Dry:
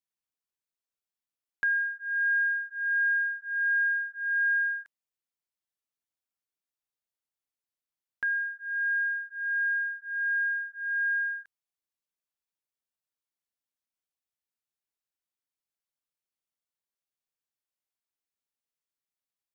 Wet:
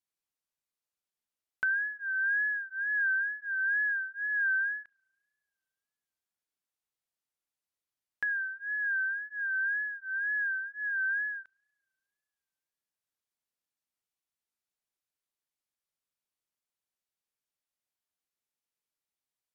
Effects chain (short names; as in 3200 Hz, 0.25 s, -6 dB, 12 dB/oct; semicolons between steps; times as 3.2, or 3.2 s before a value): spring tank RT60 2.4 s, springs 33 ms, chirp 70 ms, DRR 19.5 dB; wow and flutter 83 cents; treble ducked by the level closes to 1600 Hz, closed at -28.5 dBFS